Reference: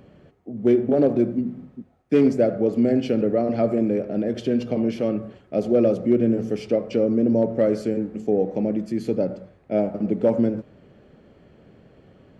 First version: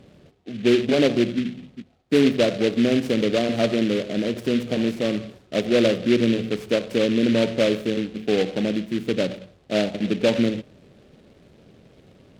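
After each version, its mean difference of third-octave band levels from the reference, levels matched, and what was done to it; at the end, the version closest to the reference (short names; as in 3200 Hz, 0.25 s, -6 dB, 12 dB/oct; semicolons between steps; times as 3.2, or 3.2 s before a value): 6.0 dB: LPF 2400 Hz 6 dB/oct; noise-modulated delay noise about 2500 Hz, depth 0.089 ms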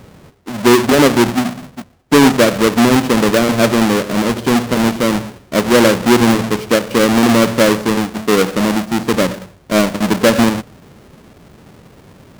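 11.5 dB: half-waves squared off; Doppler distortion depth 0.13 ms; gain +5 dB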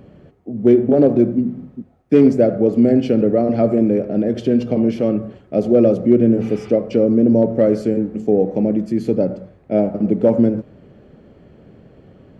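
1.5 dB: spectral repair 6.44–6.67, 720–4900 Hz after; tilt shelf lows +3 dB, about 750 Hz; gain +4 dB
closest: third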